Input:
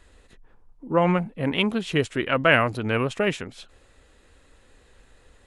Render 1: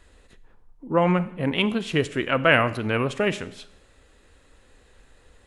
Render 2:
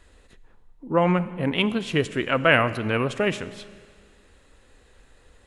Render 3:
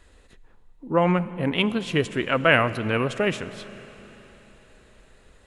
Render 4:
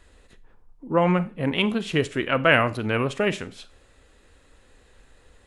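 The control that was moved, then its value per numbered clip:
four-comb reverb, RT60: 0.73, 1.9, 4.3, 0.34 seconds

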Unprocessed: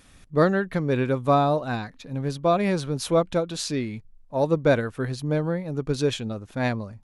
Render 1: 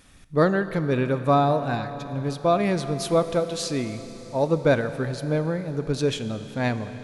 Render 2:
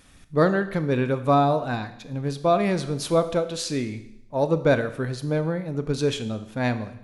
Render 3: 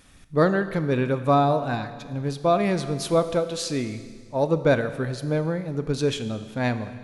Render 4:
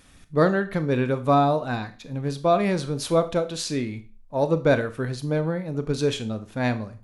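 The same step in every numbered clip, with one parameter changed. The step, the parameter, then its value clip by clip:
four-comb reverb, RT60: 4.6, 0.81, 1.8, 0.36 seconds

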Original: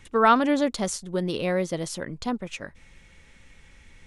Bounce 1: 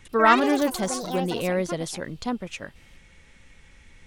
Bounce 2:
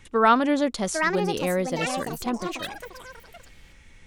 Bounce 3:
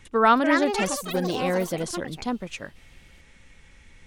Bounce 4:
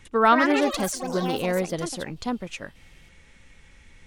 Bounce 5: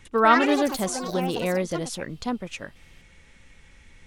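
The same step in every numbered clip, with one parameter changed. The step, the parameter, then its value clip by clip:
delay with pitch and tempo change per echo, delay time: 91, 847, 335, 215, 142 milliseconds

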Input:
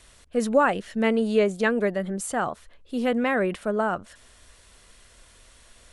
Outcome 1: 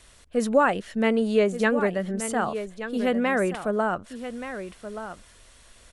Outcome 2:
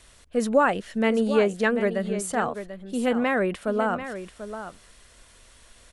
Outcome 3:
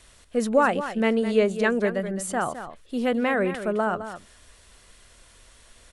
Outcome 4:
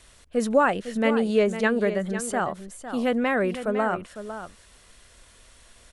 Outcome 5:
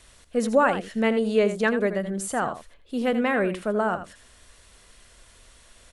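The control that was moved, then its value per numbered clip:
single-tap delay, delay time: 1,177, 739, 211, 504, 82 milliseconds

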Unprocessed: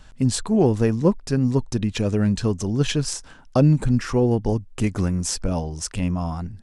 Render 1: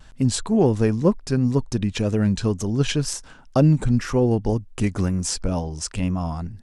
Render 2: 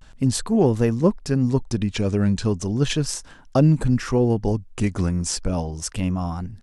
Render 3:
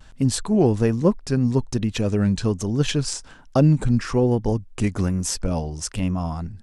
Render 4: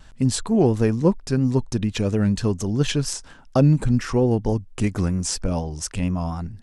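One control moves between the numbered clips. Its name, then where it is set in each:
pitch vibrato, speed: 2, 0.36, 1.2, 4.3 Hertz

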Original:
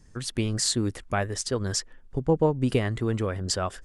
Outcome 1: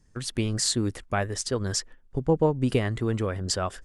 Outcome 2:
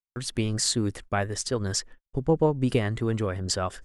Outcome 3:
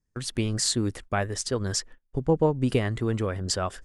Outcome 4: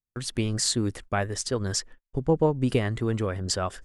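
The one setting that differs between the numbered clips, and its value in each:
noise gate, range: −7, −57, −25, −42 decibels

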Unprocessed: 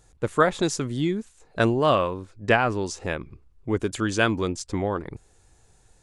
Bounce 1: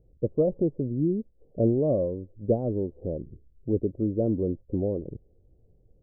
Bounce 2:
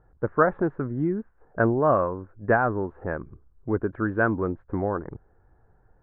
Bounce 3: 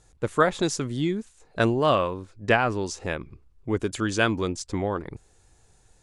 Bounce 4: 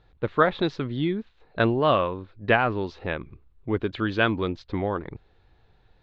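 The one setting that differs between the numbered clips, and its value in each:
elliptic low-pass filter, frequency: 560, 1,600, 11,000, 4,000 Hertz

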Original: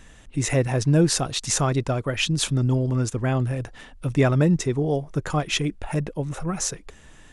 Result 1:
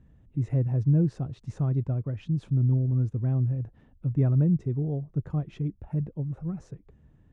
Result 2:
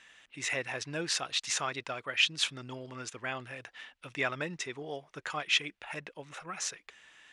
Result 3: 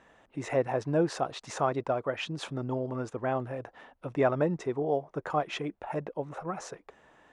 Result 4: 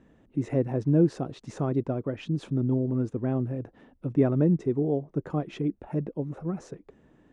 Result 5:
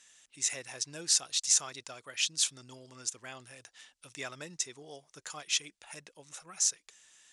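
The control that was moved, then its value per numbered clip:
resonant band-pass, frequency: 110, 2,500, 760, 290, 6,400 Hertz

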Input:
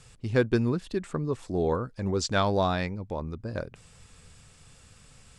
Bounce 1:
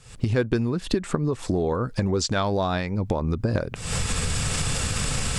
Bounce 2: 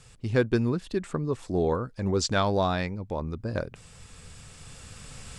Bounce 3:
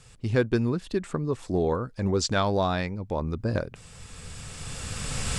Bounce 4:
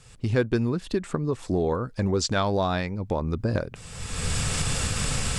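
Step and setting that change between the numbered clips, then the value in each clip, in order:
camcorder AGC, rising by: 83, 5, 13, 34 dB per second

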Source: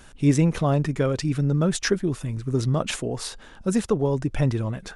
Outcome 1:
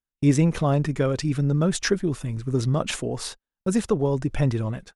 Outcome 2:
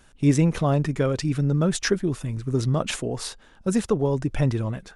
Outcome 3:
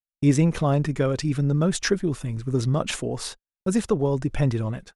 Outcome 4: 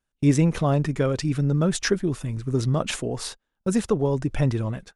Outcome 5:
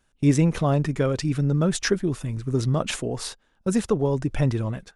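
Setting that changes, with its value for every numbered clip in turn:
noise gate, range: −47, −7, −60, −34, −20 decibels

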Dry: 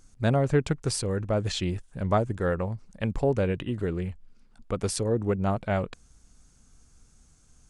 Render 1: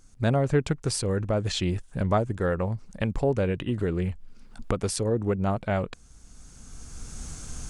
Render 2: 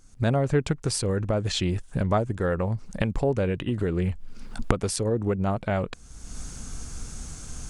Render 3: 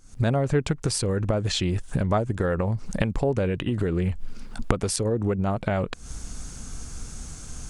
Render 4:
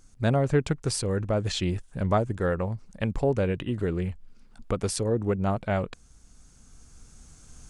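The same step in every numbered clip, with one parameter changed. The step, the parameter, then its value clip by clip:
camcorder AGC, rising by: 14, 35, 87, 5.4 dB per second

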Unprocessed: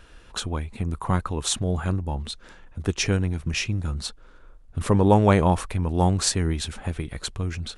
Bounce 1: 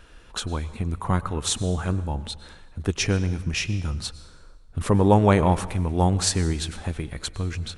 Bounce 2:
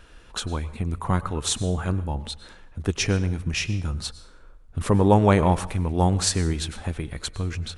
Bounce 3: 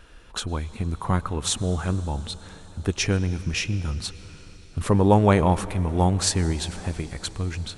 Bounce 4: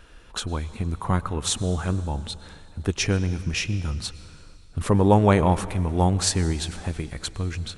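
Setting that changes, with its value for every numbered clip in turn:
dense smooth reverb, RT60: 1.1, 0.54, 5.3, 2.5 seconds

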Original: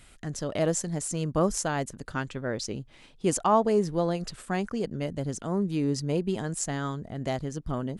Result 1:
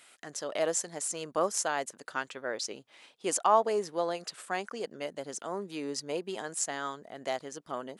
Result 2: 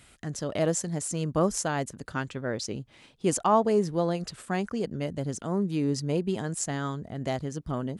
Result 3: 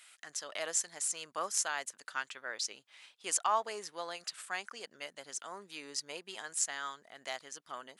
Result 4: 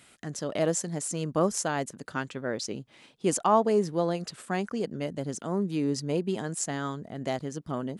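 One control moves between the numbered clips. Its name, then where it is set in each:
high-pass filter, corner frequency: 520, 55, 1,300, 160 Hertz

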